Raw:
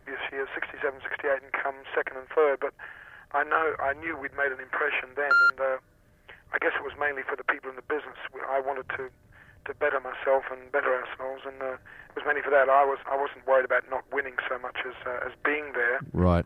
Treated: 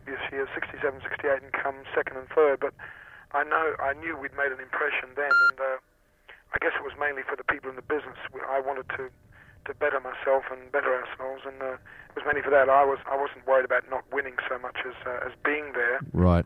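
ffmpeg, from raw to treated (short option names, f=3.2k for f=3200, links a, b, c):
-af "asetnsamples=n=441:p=0,asendcmd='2.9 equalizer g 1;5.55 equalizer g -11;6.56 equalizer g -0.5;7.51 equalizer g 9.5;8.39 equalizer g 2;12.33 equalizer g 11.5;13 equalizer g 3',equalizer=f=120:t=o:w=2.1:g=10.5"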